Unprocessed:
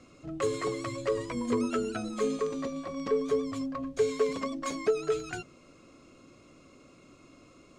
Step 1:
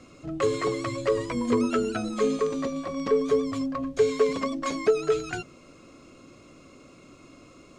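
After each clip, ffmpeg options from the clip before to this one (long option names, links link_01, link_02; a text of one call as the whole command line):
ffmpeg -i in.wav -filter_complex "[0:a]acrossover=split=6800[link_01][link_02];[link_02]acompressor=threshold=-57dB:ratio=4:attack=1:release=60[link_03];[link_01][link_03]amix=inputs=2:normalize=0,volume=5dB" out.wav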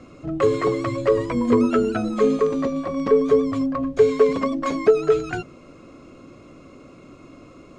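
ffmpeg -i in.wav -af "highshelf=frequency=2800:gain=-11.5,volume=6.5dB" out.wav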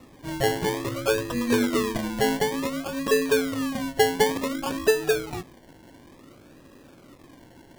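ffmpeg -i in.wav -af "acrusher=samples=28:mix=1:aa=0.000001:lfo=1:lforange=16.8:lforate=0.56,volume=-5dB" out.wav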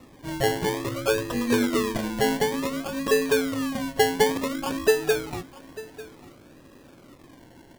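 ffmpeg -i in.wav -af "aecho=1:1:896:0.126" out.wav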